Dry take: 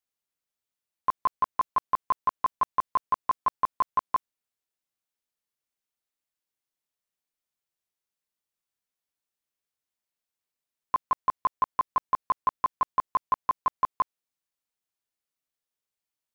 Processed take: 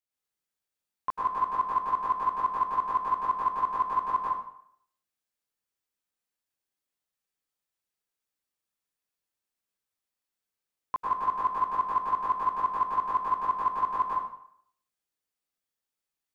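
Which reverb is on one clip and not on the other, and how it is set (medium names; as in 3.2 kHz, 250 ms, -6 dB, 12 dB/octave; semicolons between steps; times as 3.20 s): plate-style reverb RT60 0.66 s, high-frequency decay 0.8×, pre-delay 90 ms, DRR -5.5 dB; trim -6 dB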